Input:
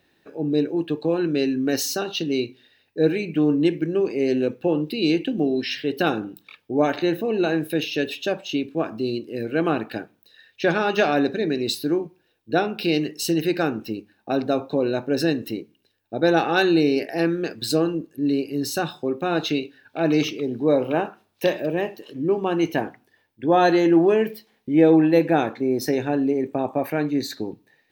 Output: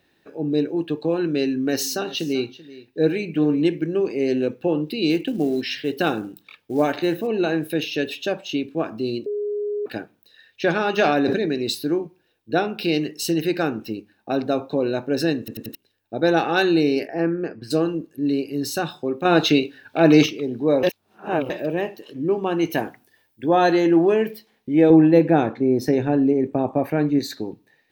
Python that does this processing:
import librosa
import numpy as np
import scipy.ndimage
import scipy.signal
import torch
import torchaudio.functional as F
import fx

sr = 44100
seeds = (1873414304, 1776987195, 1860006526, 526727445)

y = fx.echo_single(x, sr, ms=385, db=-18.5, at=(1.76, 3.64), fade=0.02)
y = fx.quant_float(y, sr, bits=4, at=(5.1, 7.27))
y = fx.sustainer(y, sr, db_per_s=27.0, at=(10.93, 11.46))
y = fx.moving_average(y, sr, points=12, at=(17.07, 17.7), fade=0.02)
y = fx.high_shelf(y, sr, hz=5600.0, db=12.0, at=(22.7, 23.49))
y = fx.tilt_eq(y, sr, slope=-2.0, at=(24.9, 27.19))
y = fx.edit(y, sr, fx.bleep(start_s=9.26, length_s=0.6, hz=414.0, db=-22.5),
    fx.stutter_over(start_s=15.39, slice_s=0.09, count=4),
    fx.clip_gain(start_s=19.25, length_s=1.01, db=6.5),
    fx.reverse_span(start_s=20.83, length_s=0.67), tone=tone)